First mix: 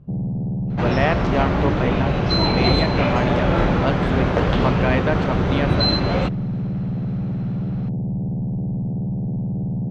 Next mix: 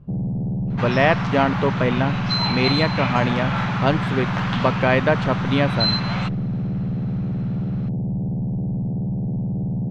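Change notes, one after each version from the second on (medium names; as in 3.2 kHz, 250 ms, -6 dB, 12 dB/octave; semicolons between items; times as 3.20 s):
speech +4.0 dB; second sound: add high-pass 850 Hz 24 dB/octave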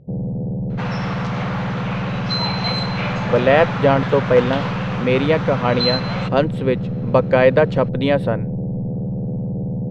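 speech: entry +2.50 s; master: add peaking EQ 500 Hz +12 dB 0.4 oct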